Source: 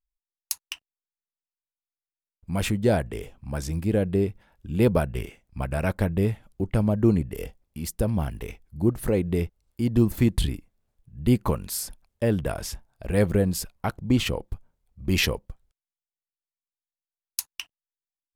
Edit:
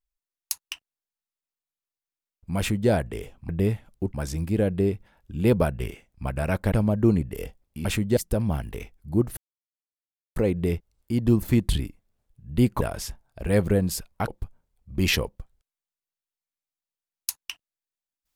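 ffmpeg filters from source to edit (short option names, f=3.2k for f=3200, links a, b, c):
-filter_complex "[0:a]asplit=9[a][b][c][d][e][f][g][h][i];[a]atrim=end=3.492[j];[b]atrim=start=6.068:end=6.722[k];[c]atrim=start=3.488:end=6.072[l];[d]atrim=start=6.718:end=7.852[m];[e]atrim=start=2.578:end=2.902[n];[f]atrim=start=7.848:end=9.05,asetpts=PTS-STARTPTS,afade=t=out:st=1.198:d=0.004:c=hsin,apad=pad_dur=0.99[o];[g]atrim=start=9.05:end=11.502,asetpts=PTS-STARTPTS,afade=t=in:d=0.004:c=hsin[p];[h]atrim=start=12.448:end=13.922[q];[i]atrim=start=14.378[r];[j][k]acrossfade=d=0.004:c1=hsin:c2=hsin[s];[s][l]acrossfade=d=0.004:c1=hsin:c2=hsin[t];[t][m]acrossfade=d=0.004:c1=hsin:c2=hsin[u];[u][n]acrossfade=d=0.004:c1=hsin:c2=hsin[v];[o][p]concat=n=2:v=0:a=1[w];[v][w]acrossfade=d=0.004:c1=hsin:c2=hsin[x];[x][q]acrossfade=d=0.004:c1=hsin:c2=hsin[y];[y][r]acrossfade=d=0.004:c1=hsin:c2=hsin"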